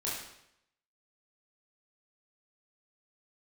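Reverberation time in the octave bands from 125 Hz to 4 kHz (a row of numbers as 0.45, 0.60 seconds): 0.80, 0.75, 0.80, 0.75, 0.75, 0.70 seconds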